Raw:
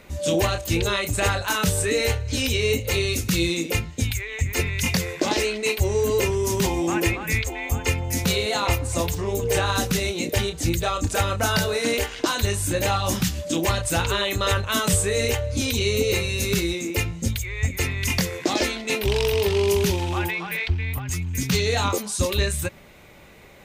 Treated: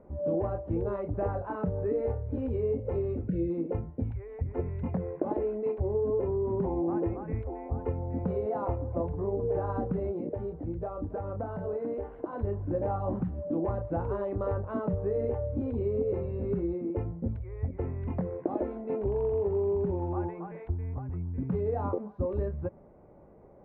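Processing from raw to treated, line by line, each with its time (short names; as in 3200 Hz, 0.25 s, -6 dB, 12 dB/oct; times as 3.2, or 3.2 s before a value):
3.28–3.5 spectral delete 670–1400 Hz
10.16–12.33 compressor, threshold -24 dBFS
whole clip: Bessel low-pass 550 Hz, order 4; low shelf 300 Hz -9.5 dB; compressor, threshold -27 dBFS; gain +2 dB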